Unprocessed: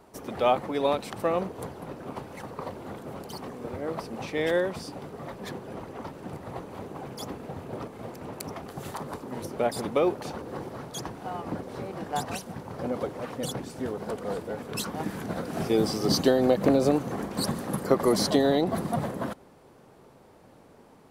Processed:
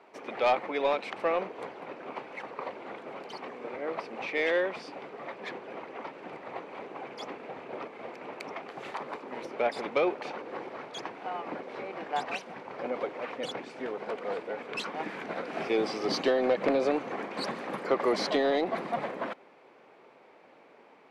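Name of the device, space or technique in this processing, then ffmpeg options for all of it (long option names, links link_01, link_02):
intercom: -af "highpass=380,lowpass=3600,equalizer=frequency=2300:width_type=o:width=0.53:gain=9,asoftclip=type=tanh:threshold=-16.5dB"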